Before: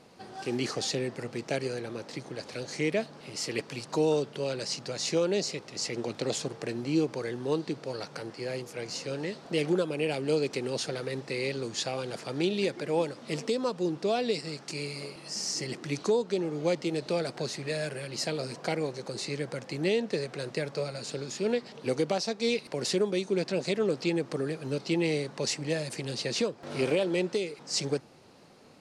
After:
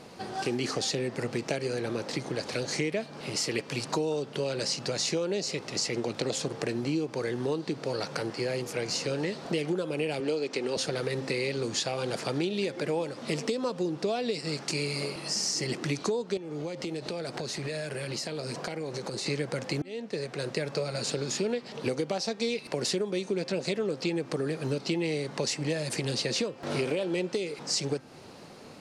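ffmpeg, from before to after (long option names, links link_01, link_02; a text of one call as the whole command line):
ffmpeg -i in.wav -filter_complex "[0:a]asettb=1/sr,asplit=3[link_01][link_02][link_03];[link_01]atrim=end=10.204[link_04];[link_02]atrim=start=10.2:end=10.77,asetpts=PTS-STARTPTS,afade=type=in:duration=0.004:curve=qsin,afade=type=out:start_time=0.566:duration=0.004:curve=qsin,highpass=230,lowpass=7100[link_05];[link_03]atrim=start=10.766[link_06];[link_04][link_05]acrossfade=duration=0.004:curve1=hsin:curve2=qsin[link_07];[link_07][link_06]acrossfade=duration=0.004:curve1=qsin:curve2=hsin,asettb=1/sr,asplit=3[link_08][link_09][link_10];[link_08]atrim=end=16.374[link_11];[link_09]atrim=start=16.37:end=19.26,asetpts=PTS-STARTPTS,afade=type=in:duration=0.004:curve=qsin,afade=type=out:start_time=2.886:duration=0.004:curve=qsin,acompressor=threshold=-38dB:ratio=16:attack=3.2:release=140:knee=1:detection=peak[link_12];[link_10]atrim=start=19.256[link_13];[link_11][link_12]acrossfade=duration=0.004:curve1=hsin:curve2=qsin[link_14];[link_14][link_13]acrossfade=duration=0.004:curve1=qsin:curve2=hsin,asplit=2[link_15][link_16];[link_15]atrim=end=19.82,asetpts=PTS-STARTPTS,afade=type=out:start_time=19.816:duration=0.004:curve=hsin[link_17];[link_16]atrim=start=19.82,asetpts=PTS-STARTPTS,afade=type=in:duration=1.04[link_18];[link_17][link_18]concat=n=2:v=0:a=1,bandreject=frequency=263.6:width_type=h:width=4,bandreject=frequency=527.2:width_type=h:width=4,bandreject=frequency=790.8:width_type=h:width=4,bandreject=frequency=1054.4:width_type=h:width=4,bandreject=frequency=1318:width_type=h:width=4,bandreject=frequency=1581.6:width_type=h:width=4,bandreject=frequency=1845.2:width_type=h:width=4,bandreject=frequency=2108.8:width_type=h:width=4,bandreject=frequency=2372.4:width_type=h:width=4,bandreject=frequency=2636:width_type=h:width=4,bandreject=frequency=2899.6:width_type=h:width=4,bandreject=frequency=3163.2:width_type=h:width=4,bandreject=frequency=3426.8:width_type=h:width=4,acompressor=threshold=-35dB:ratio=6,volume=8dB" out.wav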